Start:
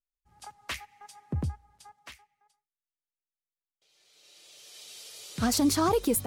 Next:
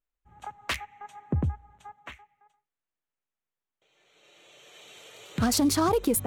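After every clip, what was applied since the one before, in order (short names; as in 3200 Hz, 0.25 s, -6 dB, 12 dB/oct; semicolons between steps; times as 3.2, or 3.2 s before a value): Wiener smoothing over 9 samples; compressor 2:1, threshold -33 dBFS, peak gain reduction 7.5 dB; gain +7.5 dB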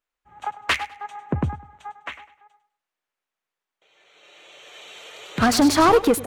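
overdrive pedal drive 17 dB, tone 3200 Hz, clips at -13.5 dBFS; feedback echo 0.101 s, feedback 28%, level -13 dB; upward expander 1.5:1, over -34 dBFS; gain +6.5 dB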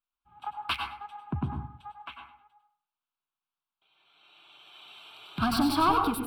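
fixed phaser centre 1900 Hz, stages 6; reverb RT60 0.50 s, pre-delay 88 ms, DRR 5 dB; gain -6 dB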